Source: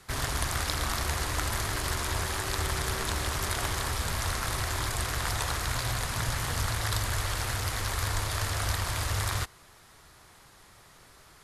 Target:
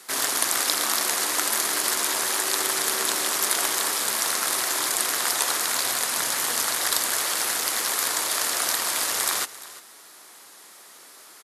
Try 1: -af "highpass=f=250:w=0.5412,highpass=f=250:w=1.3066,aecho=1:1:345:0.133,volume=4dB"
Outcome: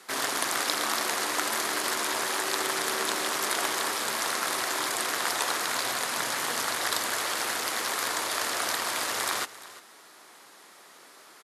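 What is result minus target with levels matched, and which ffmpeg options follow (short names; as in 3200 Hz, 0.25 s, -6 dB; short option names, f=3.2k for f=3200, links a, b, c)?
8000 Hz band -3.0 dB
-af "highpass=f=250:w=0.5412,highpass=f=250:w=1.3066,highshelf=f=5.2k:g=11,aecho=1:1:345:0.133,volume=4dB"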